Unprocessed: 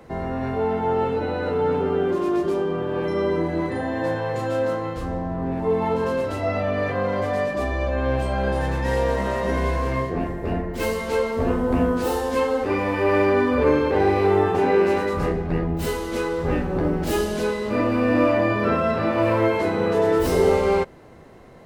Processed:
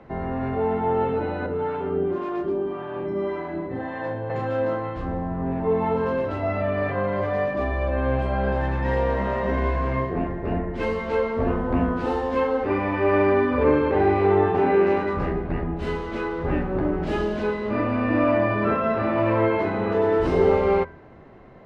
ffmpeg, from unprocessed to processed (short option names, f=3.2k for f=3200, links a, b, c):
-filter_complex "[0:a]asettb=1/sr,asplit=3[a][b][c];[a]atrim=end=1.464[d];[b]atrim=start=1.46:end=4.3,asetpts=PTS-STARTPTS,afade=t=in:d=0.004:c=qsin,afade=t=out:st=2.836:d=0.004:c=qsin,acrossover=split=560[e][f];[e]aeval=exprs='val(0)*(1-0.7/2+0.7/2*cos(2*PI*1.8*n/s))':c=same[g];[f]aeval=exprs='val(0)*(1-0.7/2-0.7/2*cos(2*PI*1.8*n/s))':c=same[h];[g][h]amix=inputs=2:normalize=0[i];[c]atrim=start=4.296[j];[d][i]acrossfade=d=0.004:c1=hsin:c2=qsin[k];[k][j]acrossfade=d=0.004:c1=qsin:c2=hsin,lowpass=2.5k,bandreject=f=490:w=13,bandreject=f=82.49:t=h:w=4,bandreject=f=164.98:t=h:w=4,bandreject=f=247.47:t=h:w=4,bandreject=f=329.96:t=h:w=4,bandreject=f=412.45:t=h:w=4,bandreject=f=494.94:t=h:w=4,bandreject=f=577.43:t=h:w=4,bandreject=f=659.92:t=h:w=4,bandreject=f=742.41:t=h:w=4,bandreject=f=824.9:t=h:w=4,bandreject=f=907.39:t=h:w=4,bandreject=f=989.88:t=h:w=4,bandreject=f=1.07237k:t=h:w=4,bandreject=f=1.15486k:t=h:w=4,bandreject=f=1.23735k:t=h:w=4,bandreject=f=1.31984k:t=h:w=4,bandreject=f=1.40233k:t=h:w=4,bandreject=f=1.48482k:t=h:w=4,bandreject=f=1.56731k:t=h:w=4,bandreject=f=1.6498k:t=h:w=4,bandreject=f=1.73229k:t=h:w=4,bandreject=f=1.81478k:t=h:w=4,bandreject=f=1.89727k:t=h:w=4,bandreject=f=1.97976k:t=h:w=4,bandreject=f=2.06225k:t=h:w=4,bandreject=f=2.14474k:t=h:w=4,bandreject=f=2.22723k:t=h:w=4,bandreject=f=2.30972k:t=h:w=4,bandreject=f=2.39221k:t=h:w=4"